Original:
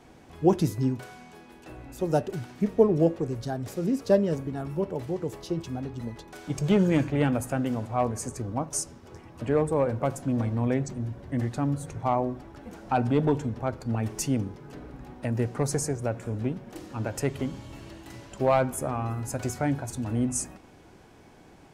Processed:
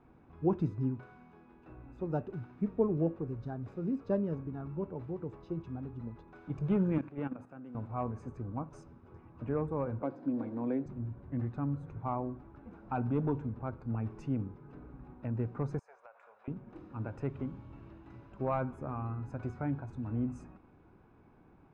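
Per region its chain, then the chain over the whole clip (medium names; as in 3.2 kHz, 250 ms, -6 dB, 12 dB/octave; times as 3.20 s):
6.98–7.75 s: high-pass 190 Hz + level held to a coarse grid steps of 13 dB
10.02–10.86 s: cabinet simulation 270–5200 Hz, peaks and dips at 290 Hz +10 dB, 520 Hz +4 dB, 1.2 kHz -6 dB, 2.7 kHz -5 dB, 4.6 kHz +7 dB + three bands compressed up and down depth 40%
15.79–16.48 s: inverse Chebyshev high-pass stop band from 320 Hz + compression 12:1, threshold -38 dBFS
whole clip: low-pass 1.5 kHz 12 dB/octave; comb 0.8 ms, depth 37%; trim -8.5 dB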